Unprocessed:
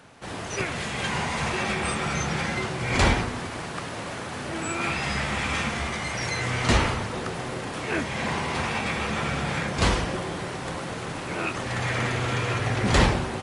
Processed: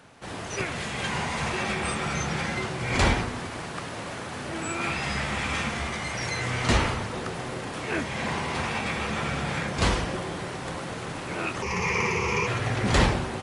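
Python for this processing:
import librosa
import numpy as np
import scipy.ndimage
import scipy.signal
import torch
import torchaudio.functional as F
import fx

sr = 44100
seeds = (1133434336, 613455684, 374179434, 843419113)

y = fx.ripple_eq(x, sr, per_octave=0.8, db=17, at=(11.62, 12.47))
y = y * 10.0 ** (-1.5 / 20.0)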